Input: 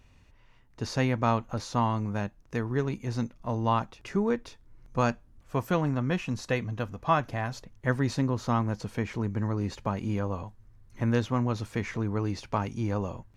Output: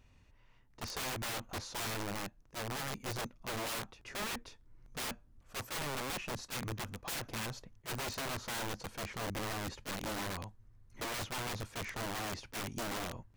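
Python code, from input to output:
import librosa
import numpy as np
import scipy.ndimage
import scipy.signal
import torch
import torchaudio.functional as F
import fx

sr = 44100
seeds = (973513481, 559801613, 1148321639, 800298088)

y = (np.mod(10.0 ** (28.0 / 20.0) * x + 1.0, 2.0) - 1.0) / 10.0 ** (28.0 / 20.0)
y = fx.attack_slew(y, sr, db_per_s=410.0)
y = F.gain(torch.from_numpy(y), -5.5).numpy()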